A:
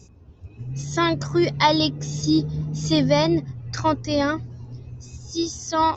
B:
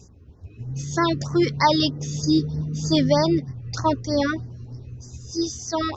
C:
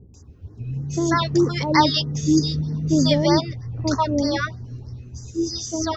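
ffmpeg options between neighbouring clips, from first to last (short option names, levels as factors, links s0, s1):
-af "afftfilt=real='re*(1-between(b*sr/1024,720*pow(3100/720,0.5+0.5*sin(2*PI*3.2*pts/sr))/1.41,720*pow(3100/720,0.5+0.5*sin(2*PI*3.2*pts/sr))*1.41))':imag='im*(1-between(b*sr/1024,720*pow(3100/720,0.5+0.5*sin(2*PI*3.2*pts/sr))/1.41,720*pow(3100/720,0.5+0.5*sin(2*PI*3.2*pts/sr))*1.41))':win_size=1024:overlap=0.75"
-filter_complex "[0:a]acrossover=split=590[s0][s1];[s1]adelay=140[s2];[s0][s2]amix=inputs=2:normalize=0,volume=1.33"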